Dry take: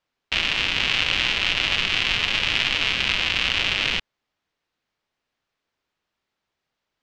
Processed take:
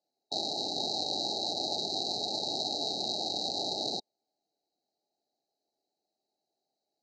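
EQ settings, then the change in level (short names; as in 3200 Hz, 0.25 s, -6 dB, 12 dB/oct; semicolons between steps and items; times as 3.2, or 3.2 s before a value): brick-wall FIR band-stop 870–3800 Hz; speaker cabinet 440–7700 Hz, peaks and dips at 510 Hz -10 dB, 1000 Hz -9 dB, 5400 Hz -6 dB; high shelf 4400 Hz -11.5 dB; +7.0 dB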